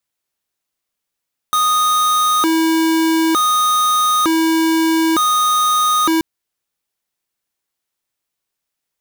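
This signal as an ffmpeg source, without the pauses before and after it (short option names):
-f lavfi -i "aevalsrc='0.188*(2*lt(mod((782*t+458/0.55*(0.5-abs(mod(0.55*t,1)-0.5))),1),0.5)-1)':d=4.68:s=44100"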